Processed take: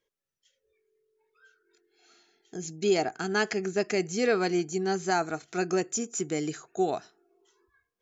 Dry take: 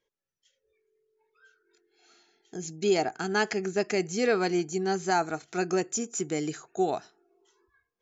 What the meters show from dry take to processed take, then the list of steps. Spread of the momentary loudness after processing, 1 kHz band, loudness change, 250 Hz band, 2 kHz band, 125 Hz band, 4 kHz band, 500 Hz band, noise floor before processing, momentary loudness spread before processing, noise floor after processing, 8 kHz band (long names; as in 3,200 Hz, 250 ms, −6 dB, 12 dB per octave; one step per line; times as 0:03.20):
7 LU, −1.5 dB, 0.0 dB, 0.0 dB, 0.0 dB, 0.0 dB, 0.0 dB, 0.0 dB, below −85 dBFS, 7 LU, below −85 dBFS, can't be measured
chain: parametric band 860 Hz −4 dB 0.21 octaves